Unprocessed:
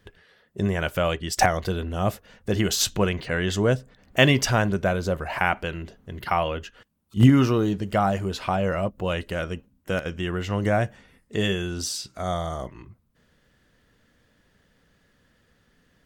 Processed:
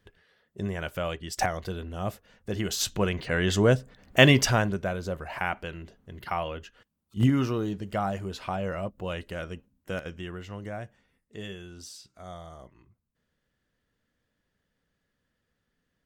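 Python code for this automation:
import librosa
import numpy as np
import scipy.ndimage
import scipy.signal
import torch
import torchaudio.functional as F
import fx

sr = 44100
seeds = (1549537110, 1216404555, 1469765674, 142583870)

y = fx.gain(x, sr, db=fx.line((2.58, -7.5), (3.53, 0.5), (4.4, 0.5), (4.85, -7.0), (10.04, -7.0), (10.69, -15.0)))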